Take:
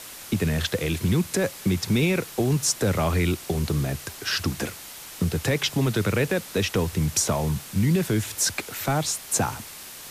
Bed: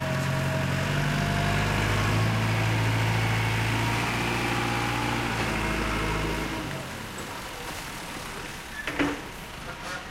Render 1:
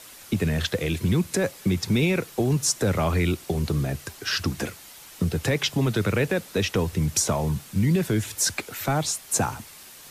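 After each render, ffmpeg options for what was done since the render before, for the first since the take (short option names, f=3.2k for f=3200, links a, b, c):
-af "afftdn=nr=6:nf=-41"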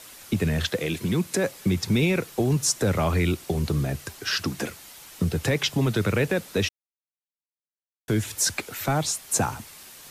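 -filter_complex "[0:a]asettb=1/sr,asplit=3[a][b][c];[a]atrim=end=0.704[d];[b]atrim=start=0.7:end=1.5,asetpts=PTS-STARTPTS,afade=t=in:d=0.004:c=qsin,afade=t=out:st=0.796:d=0.004:c=qsin,highpass=150[e];[c]atrim=start=1.496[f];[d][e]acrossfade=d=0.004:c1=hsin:c2=qsin[g];[g][f]acrossfade=d=0.004:c1=qsin:c2=hsin,asettb=1/sr,asplit=3[h][i][j];[h]atrim=end=4.314[k];[i]atrim=start=4.31:end=4.71,asetpts=PTS-STARTPTS,afade=t=in:d=0.004:c=qsin,afade=t=out:st=0.396:d=0.004:c=qsin,highpass=130[l];[j]atrim=start=4.706[m];[k][l]acrossfade=d=0.004:c1=hsin:c2=qsin[n];[n][m]acrossfade=d=0.004:c1=qsin:c2=hsin,asplit=3[o][p][q];[o]atrim=end=6.69,asetpts=PTS-STARTPTS,afade=t=out:st=6.686:d=0.004:c=hsin[r];[p]atrim=start=6.69:end=8.08,asetpts=PTS-STARTPTS,volume=0[s];[q]atrim=start=8.08,asetpts=PTS-STARTPTS,afade=t=in:d=0.004:c=hsin[t];[r][s][t]concat=n=3:v=0:a=1"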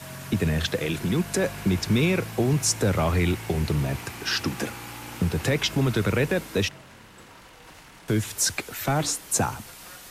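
-filter_complex "[1:a]volume=-12.5dB[a];[0:a][a]amix=inputs=2:normalize=0"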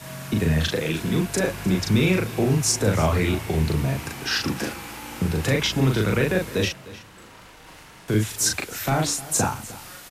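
-filter_complex "[0:a]asplit=2[a][b];[b]adelay=38,volume=-2.5dB[c];[a][c]amix=inputs=2:normalize=0,aecho=1:1:305:0.126"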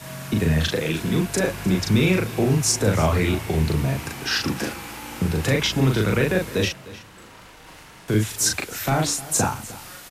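-af "volume=1dB"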